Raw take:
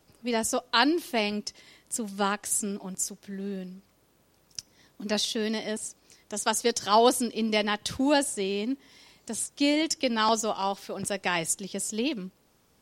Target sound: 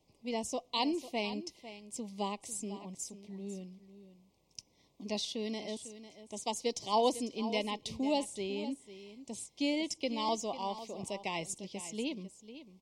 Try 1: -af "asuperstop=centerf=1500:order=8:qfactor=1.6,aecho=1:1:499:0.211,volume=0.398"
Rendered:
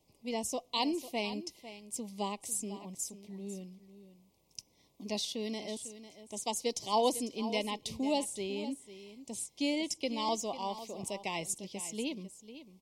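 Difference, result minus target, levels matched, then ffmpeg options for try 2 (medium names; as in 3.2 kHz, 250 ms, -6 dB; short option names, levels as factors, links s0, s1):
8 kHz band +3.5 dB
-af "asuperstop=centerf=1500:order=8:qfactor=1.6,equalizer=f=13000:t=o:w=0.73:g=-13,aecho=1:1:499:0.211,volume=0.398"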